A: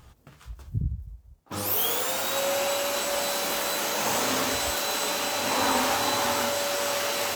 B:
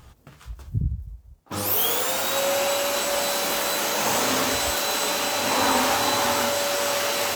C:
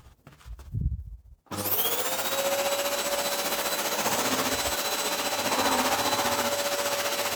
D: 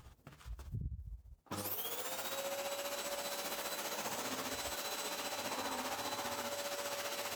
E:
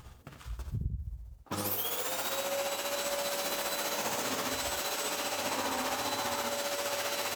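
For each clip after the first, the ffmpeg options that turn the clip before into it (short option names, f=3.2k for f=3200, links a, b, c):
-af "acontrast=34,volume=-2dB"
-af "tremolo=f=15:d=0.52,volume=-1.5dB"
-af "acompressor=threshold=-34dB:ratio=4,volume=-5dB"
-af "aecho=1:1:88:0.422,volume=6.5dB"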